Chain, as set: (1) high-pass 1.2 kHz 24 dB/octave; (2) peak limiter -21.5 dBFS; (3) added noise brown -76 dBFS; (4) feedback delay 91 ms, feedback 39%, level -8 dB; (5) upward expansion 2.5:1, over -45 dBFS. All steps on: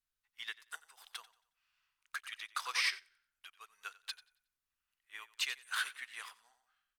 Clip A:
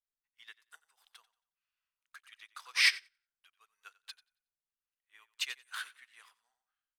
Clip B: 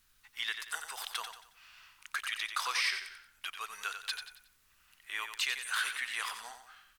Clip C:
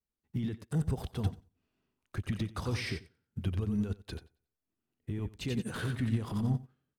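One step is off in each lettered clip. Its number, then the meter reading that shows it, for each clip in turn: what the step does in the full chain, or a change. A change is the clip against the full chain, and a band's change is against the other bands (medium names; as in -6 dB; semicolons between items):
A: 2, crest factor change +5.0 dB; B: 5, crest factor change -4.5 dB; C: 1, 500 Hz band +29.0 dB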